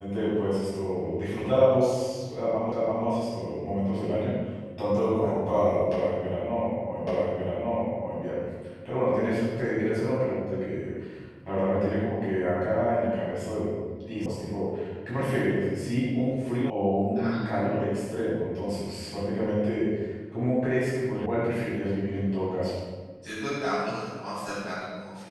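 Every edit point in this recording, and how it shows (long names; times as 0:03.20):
0:02.72: the same again, the last 0.34 s
0:07.07: the same again, the last 1.15 s
0:14.26: cut off before it has died away
0:16.70: cut off before it has died away
0:21.26: cut off before it has died away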